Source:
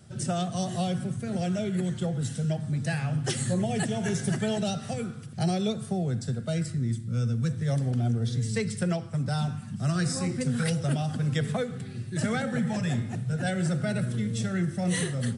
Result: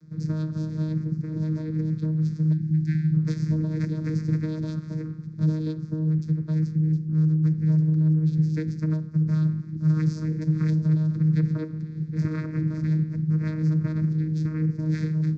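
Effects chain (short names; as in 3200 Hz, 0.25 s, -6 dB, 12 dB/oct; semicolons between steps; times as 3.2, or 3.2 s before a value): vocoder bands 8, saw 156 Hz; spectral delete 2.52–3.14, 430–1400 Hz; fixed phaser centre 2900 Hz, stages 6; gain +5.5 dB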